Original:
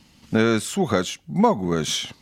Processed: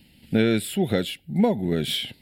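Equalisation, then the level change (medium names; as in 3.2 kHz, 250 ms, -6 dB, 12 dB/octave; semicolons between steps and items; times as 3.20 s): treble shelf 9.2 kHz +9.5 dB; static phaser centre 2.7 kHz, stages 4; 0.0 dB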